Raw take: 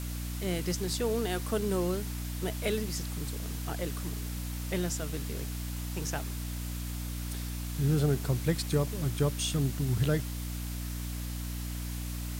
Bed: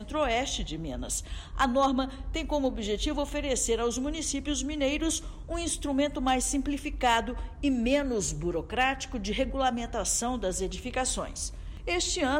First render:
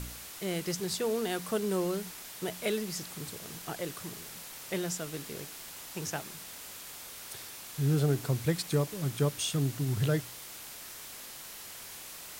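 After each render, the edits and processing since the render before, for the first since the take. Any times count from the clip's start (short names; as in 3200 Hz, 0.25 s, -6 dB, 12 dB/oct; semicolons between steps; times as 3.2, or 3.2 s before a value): de-hum 60 Hz, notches 5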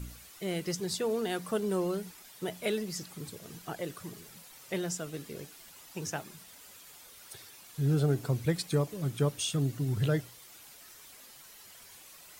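denoiser 10 dB, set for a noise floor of -46 dBFS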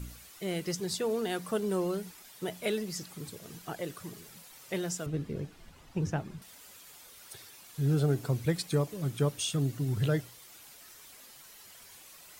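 5.06–6.42 RIAA curve playback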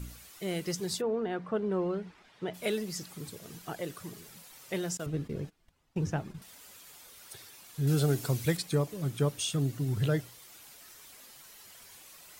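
1–2.53 LPF 1500 Hz -> 3100 Hz; 4.97–6.37 gate -47 dBFS, range -18 dB; 7.87–8.57 high shelf 2400 Hz +9.5 dB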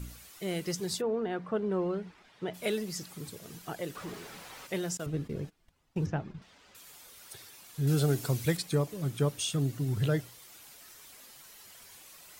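3.95–4.67 overdrive pedal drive 33 dB, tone 1300 Hz, clips at -30.5 dBFS; 6.06–6.75 air absorption 150 m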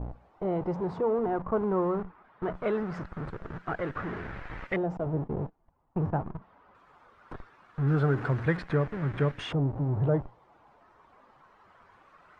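in parallel at -5.5 dB: Schmitt trigger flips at -39.5 dBFS; on the sum: LFO low-pass saw up 0.21 Hz 770–1900 Hz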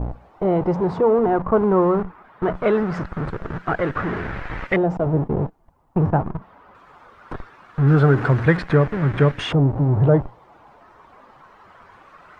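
gain +10.5 dB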